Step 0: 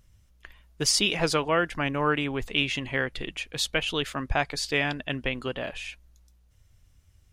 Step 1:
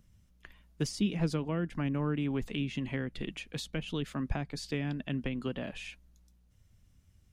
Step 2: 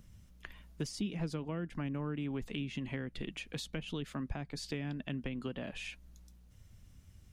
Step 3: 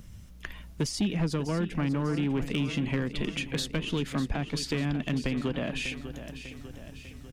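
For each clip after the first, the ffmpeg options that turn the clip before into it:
-filter_complex "[0:a]acrossover=split=350[a][b];[b]acompressor=threshold=-33dB:ratio=10[c];[a][c]amix=inputs=2:normalize=0,equalizer=f=200:t=o:w=1.2:g=10,volume=-5.5dB"
-af "acompressor=threshold=-50dB:ratio=2,volume=6dB"
-filter_complex "[0:a]aecho=1:1:597|1194|1791|2388|2985|3582:0.251|0.141|0.0788|0.0441|0.0247|0.0138,asplit=2[a][b];[b]aeval=exprs='0.0224*(abs(mod(val(0)/0.0224+3,4)-2)-1)':c=same,volume=-6.5dB[c];[a][c]amix=inputs=2:normalize=0,volume=6.5dB"

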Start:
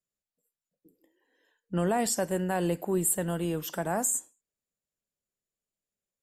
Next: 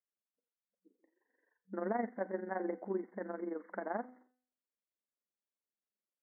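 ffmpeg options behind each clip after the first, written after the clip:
-af "tremolo=f=23:d=0.71,bandreject=f=251.6:t=h:w=4,bandreject=f=503.2:t=h:w=4,bandreject=f=754.8:t=h:w=4,bandreject=f=1.0064k:t=h:w=4,bandreject=f=1.258k:t=h:w=4,bandreject=f=1.5096k:t=h:w=4,bandreject=f=1.7612k:t=h:w=4,bandreject=f=2.0128k:t=h:w=4,bandreject=f=2.2644k:t=h:w=4,bandreject=f=2.516k:t=h:w=4,bandreject=f=2.7676k:t=h:w=4,bandreject=f=3.0192k:t=h:w=4,bandreject=f=3.2708k:t=h:w=4,bandreject=f=3.5224k:t=h:w=4,bandreject=f=3.774k:t=h:w=4,bandreject=f=4.0256k:t=h:w=4,bandreject=f=4.2772k:t=h:w=4,bandreject=f=4.5288k:t=h:w=4,bandreject=f=4.7804k:t=h:w=4,bandreject=f=5.032k:t=h:w=4,bandreject=f=5.2836k:t=h:w=4,bandreject=f=5.5352k:t=h:w=4,bandreject=f=5.7868k:t=h:w=4,bandreject=f=6.0384k:t=h:w=4,bandreject=f=6.29k:t=h:w=4,bandreject=f=6.5416k:t=h:w=4,bandreject=f=6.7932k:t=h:w=4,bandreject=f=7.0448k:t=h:w=4,bandreject=f=7.2964k:t=h:w=4,bandreject=f=7.548k:t=h:w=4,bandreject=f=7.7996k:t=h:w=4,bandreject=f=8.0512k:t=h:w=4,bandreject=f=8.3028k:t=h:w=4,bandreject=f=8.5544k:t=h:w=4,bandreject=f=8.806k:t=h:w=4,bandreject=f=9.0576k:t=h:w=4,bandreject=f=9.3092k:t=h:w=4,bandreject=f=9.5608k:t=h:w=4,bandreject=f=9.8124k:t=h:w=4,afftfilt=real='re*between(b*sr/4096,190,2200)':imag='im*between(b*sr/4096,190,2200)':win_size=4096:overlap=0.75,volume=-4.5dB"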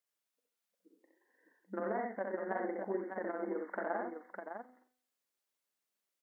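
-af "lowshelf=f=260:g=-11,acompressor=threshold=-41dB:ratio=3,aecho=1:1:65|90|605:0.668|0.282|0.501,volume=5.5dB"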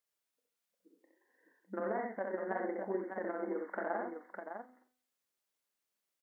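-filter_complex "[0:a]asplit=2[a][b];[b]adelay=27,volume=-14dB[c];[a][c]amix=inputs=2:normalize=0"

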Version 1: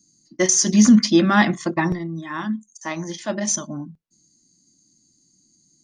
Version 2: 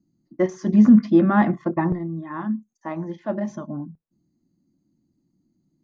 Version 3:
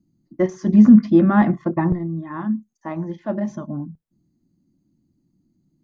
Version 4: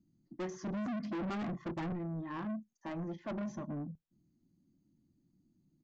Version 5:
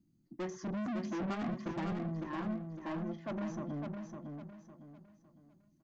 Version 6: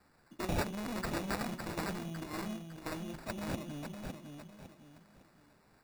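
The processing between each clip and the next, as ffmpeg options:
-af "lowpass=1.1k"
-af "lowshelf=f=160:g=8"
-af "alimiter=limit=-10.5dB:level=0:latency=1:release=70,aresample=16000,asoftclip=type=tanh:threshold=-28.5dB,aresample=44100,volume=-7dB"
-af "aecho=1:1:556|1112|1668|2224:0.531|0.181|0.0614|0.0209"
-af "aexciter=amount=13.2:drive=7.8:freq=2.8k,acrusher=samples=14:mix=1:aa=0.000001,volume=-4dB"

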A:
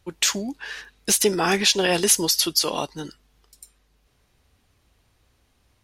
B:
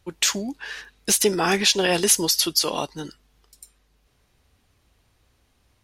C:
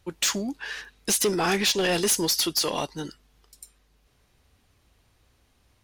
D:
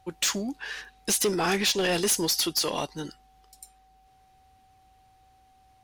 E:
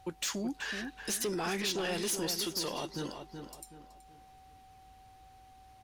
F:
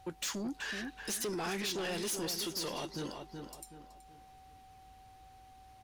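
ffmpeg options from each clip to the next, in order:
-af anull
-af "asoftclip=type=tanh:threshold=-17.5dB"
-af "aeval=exprs='val(0)+0.00141*sin(2*PI*760*n/s)':c=same,volume=-1.5dB"
-filter_complex "[0:a]alimiter=level_in=7dB:limit=-24dB:level=0:latency=1:release=198,volume=-7dB,asplit=2[a][b];[b]adelay=376,lowpass=f=2.6k:p=1,volume=-7dB,asplit=2[c][d];[d]adelay=376,lowpass=f=2.6k:p=1,volume=0.35,asplit=2[e][f];[f]adelay=376,lowpass=f=2.6k:p=1,volume=0.35,asplit=2[g][h];[h]adelay=376,lowpass=f=2.6k:p=1,volume=0.35[i];[a][c][e][g][i]amix=inputs=5:normalize=0,volume=2.5dB"
-af "asoftclip=type=tanh:threshold=-31.5dB"

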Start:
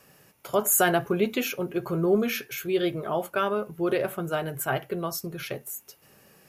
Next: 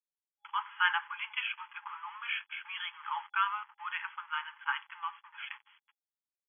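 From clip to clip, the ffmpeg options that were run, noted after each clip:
-af "aecho=1:1:91|182|273:0.0794|0.0357|0.0161,aeval=exprs='sgn(val(0))*max(abs(val(0))-0.00708,0)':c=same,afftfilt=real='re*between(b*sr/4096,820,3400)':imag='im*between(b*sr/4096,820,3400)':win_size=4096:overlap=0.75"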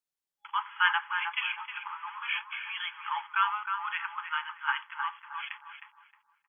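-filter_complex "[0:a]asplit=2[a][b];[b]adelay=312,lowpass=f=1.2k:p=1,volume=-3dB,asplit=2[c][d];[d]adelay=312,lowpass=f=1.2k:p=1,volume=0.4,asplit=2[e][f];[f]adelay=312,lowpass=f=1.2k:p=1,volume=0.4,asplit=2[g][h];[h]adelay=312,lowpass=f=1.2k:p=1,volume=0.4,asplit=2[i][j];[j]adelay=312,lowpass=f=1.2k:p=1,volume=0.4[k];[a][c][e][g][i][k]amix=inputs=6:normalize=0,volume=3dB"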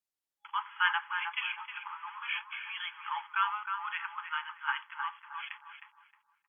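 -af "volume=-3dB" -ar 48000 -c:a libopus -b:a 192k

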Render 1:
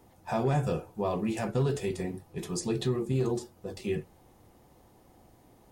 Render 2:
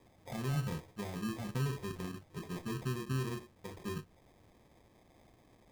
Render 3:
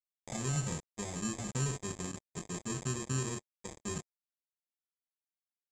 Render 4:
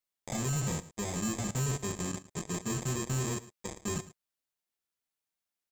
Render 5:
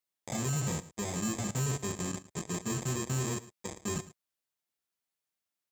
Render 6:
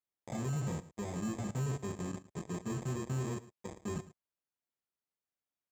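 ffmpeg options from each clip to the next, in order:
-filter_complex "[0:a]acrossover=split=280[a][b];[b]acompressor=threshold=-41dB:ratio=6[c];[a][c]amix=inputs=2:normalize=0,acrusher=samples=31:mix=1:aa=0.000001,volume=-5dB"
-af "acrusher=bits=6:mix=0:aa=0.5,lowpass=f=7.3k:t=q:w=13"
-af "asoftclip=type=hard:threshold=-34dB,aecho=1:1:109:0.141,volume=5.5dB"
-af "highpass=59"
-af "highshelf=f=2.2k:g=-11.5,volume=-2.5dB"

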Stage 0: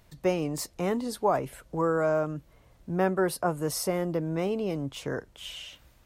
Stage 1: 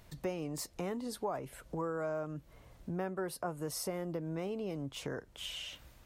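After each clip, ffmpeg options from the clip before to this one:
-af "acompressor=threshold=-41dB:ratio=2.5,volume=1dB"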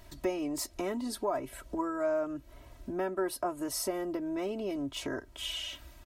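-af "aecho=1:1:3.1:0.87,volume=2.5dB"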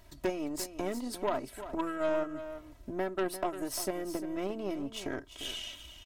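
-af "aeval=exprs='0.119*(cos(1*acos(clip(val(0)/0.119,-1,1)))-cos(1*PI/2))+0.0211*(cos(4*acos(clip(val(0)/0.119,-1,1)))-cos(4*PI/2))+0.0299*(cos(6*acos(clip(val(0)/0.119,-1,1)))-cos(6*PI/2))+0.00596*(cos(7*acos(clip(val(0)/0.119,-1,1)))-cos(7*PI/2))+0.0075*(cos(8*acos(clip(val(0)/0.119,-1,1)))-cos(8*PI/2))':c=same,aecho=1:1:348:0.251"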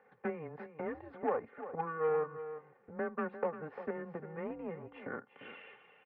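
-af "highpass=f=470:t=q:w=0.5412,highpass=f=470:t=q:w=1.307,lowpass=f=2.2k:t=q:w=0.5176,lowpass=f=2.2k:t=q:w=0.7071,lowpass=f=2.2k:t=q:w=1.932,afreqshift=-160"

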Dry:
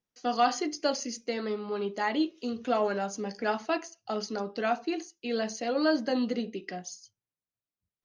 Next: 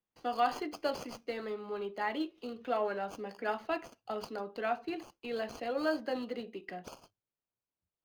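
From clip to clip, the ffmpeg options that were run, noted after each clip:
-filter_complex "[0:a]acrossover=split=300|4300[a][b][c];[a]acompressor=threshold=-46dB:ratio=6[d];[c]acrusher=samples=23:mix=1:aa=0.000001[e];[d][b][e]amix=inputs=3:normalize=0,volume=-4.5dB"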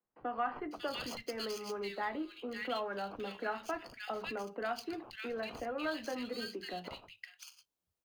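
-filter_complex "[0:a]acrossover=split=200|1200[a][b][c];[b]acompressor=threshold=-42dB:ratio=6[d];[a][d][c]amix=inputs=3:normalize=0,acrossover=split=170|1900[e][f][g];[e]adelay=40[h];[g]adelay=550[i];[h][f][i]amix=inputs=3:normalize=0,volume=3.5dB"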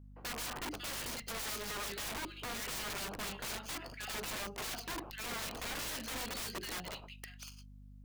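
-af "aeval=exprs='(mod(79.4*val(0)+1,2)-1)/79.4':c=same,aeval=exprs='val(0)+0.00178*(sin(2*PI*50*n/s)+sin(2*PI*2*50*n/s)/2+sin(2*PI*3*50*n/s)/3+sin(2*PI*4*50*n/s)/4+sin(2*PI*5*50*n/s)/5)':c=same,volume=2.5dB"

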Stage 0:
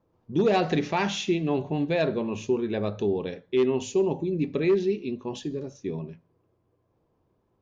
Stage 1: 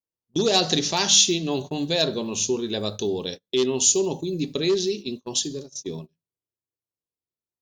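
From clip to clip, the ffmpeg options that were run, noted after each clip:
-af "aexciter=amount=12.6:drive=3.2:freq=3.4k,bandreject=f=50:t=h:w=6,bandreject=f=100:t=h:w=6,bandreject=f=150:t=h:w=6,bandreject=f=200:t=h:w=6,agate=range=-31dB:threshold=-32dB:ratio=16:detection=peak"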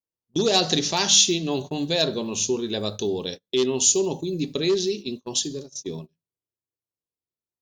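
-af anull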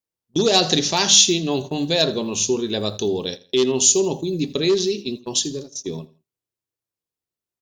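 -af "aecho=1:1:83|166:0.1|0.031,volume=3.5dB"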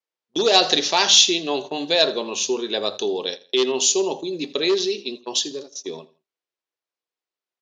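-af "highpass=460,lowpass=4.7k,volume=3dB"

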